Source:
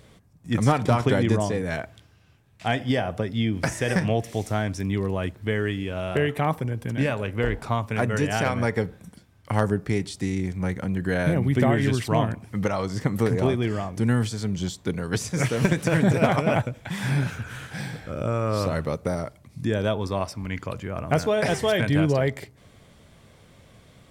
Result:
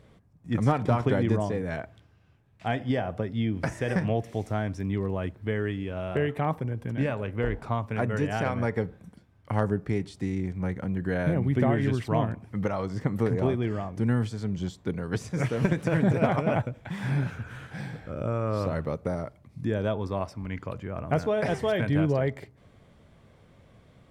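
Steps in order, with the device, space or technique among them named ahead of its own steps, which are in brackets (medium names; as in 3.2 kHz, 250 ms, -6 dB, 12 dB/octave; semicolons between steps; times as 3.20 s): through cloth (treble shelf 3.1 kHz -12 dB); trim -3 dB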